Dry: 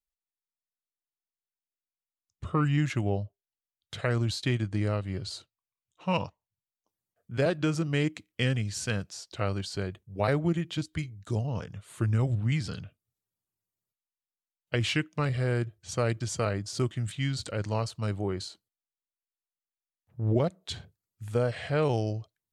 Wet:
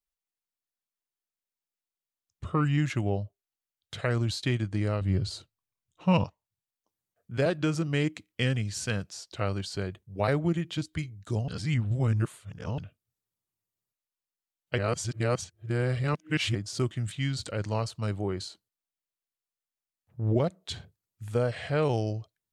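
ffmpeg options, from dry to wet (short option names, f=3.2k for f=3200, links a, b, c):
-filter_complex "[0:a]asettb=1/sr,asplit=3[a][b][c];[a]atrim=end=5.014[d];[b]atrim=start=5.01:end=6.24,asetpts=PTS-STARTPTS,afade=t=in:d=0.004:c=qsin,afade=t=out:st=1.226:d=0.004:c=qsin,lowshelf=f=290:g=10[e];[c]atrim=start=6.236[f];[d][e]acrossfade=d=0.004:c1=hsin:c2=qsin[g];[g][f]acrossfade=d=0.004:c1=qsin:c2=hsin,asplit=5[h][i][j][k][l];[h]atrim=end=11.482[m];[i]atrim=start=11.478:end=12.782,asetpts=PTS-STARTPTS,areverse[n];[j]atrim=start=12.778:end=14.782[o];[k]atrim=start=14.778:end=16.552,asetpts=PTS-STARTPTS,areverse[p];[l]atrim=start=16.548[q];[m][n]acrossfade=d=0.004:c1=hsin:c2=hsin[r];[r][o]acrossfade=d=0.004:c1=hsin:c2=hsin[s];[s][p]acrossfade=d=0.004:c1=hsin:c2=hsin[t];[t][q]acrossfade=d=0.004:c1=hsin:c2=hsin"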